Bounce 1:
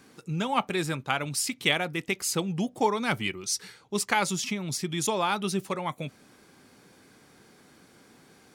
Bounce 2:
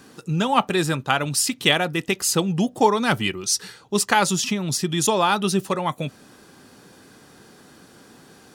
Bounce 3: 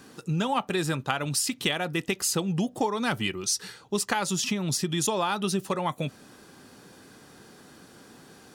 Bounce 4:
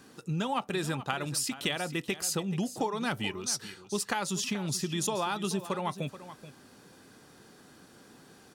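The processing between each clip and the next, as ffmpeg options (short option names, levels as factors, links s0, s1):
-af "bandreject=f=2200:w=6.7,volume=2.37"
-af "acompressor=threshold=0.0891:ratio=6,volume=0.794"
-af "aecho=1:1:430:0.2,volume=0.596"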